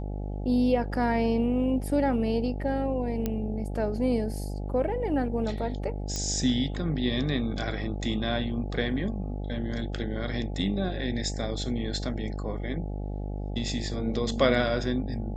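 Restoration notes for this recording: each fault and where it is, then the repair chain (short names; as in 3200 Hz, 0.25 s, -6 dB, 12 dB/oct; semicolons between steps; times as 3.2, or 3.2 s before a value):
buzz 50 Hz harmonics 17 -33 dBFS
3.26 pop -15 dBFS
6.16 pop -17 dBFS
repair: de-click; de-hum 50 Hz, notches 17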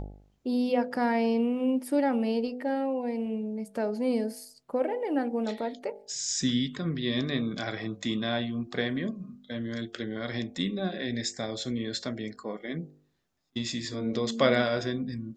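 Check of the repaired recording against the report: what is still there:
none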